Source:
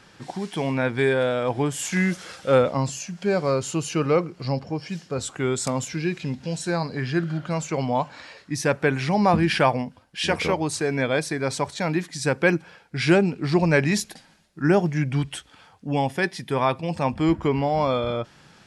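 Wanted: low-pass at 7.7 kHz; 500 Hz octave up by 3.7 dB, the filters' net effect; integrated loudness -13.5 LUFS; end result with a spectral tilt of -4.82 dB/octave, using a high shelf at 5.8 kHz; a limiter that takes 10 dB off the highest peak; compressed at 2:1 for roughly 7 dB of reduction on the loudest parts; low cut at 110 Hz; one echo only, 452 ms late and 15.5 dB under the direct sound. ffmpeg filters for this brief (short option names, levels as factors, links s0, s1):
-af "highpass=110,lowpass=7700,equalizer=f=500:t=o:g=4.5,highshelf=f=5800:g=3,acompressor=threshold=0.0708:ratio=2,alimiter=limit=0.119:level=0:latency=1,aecho=1:1:452:0.168,volume=5.96"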